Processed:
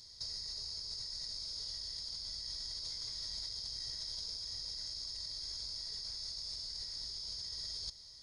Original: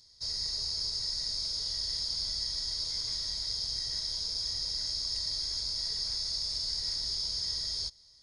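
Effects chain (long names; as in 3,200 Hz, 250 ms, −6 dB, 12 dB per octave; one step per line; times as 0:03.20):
compressor whose output falls as the input rises −41 dBFS, ratio −1
level −2 dB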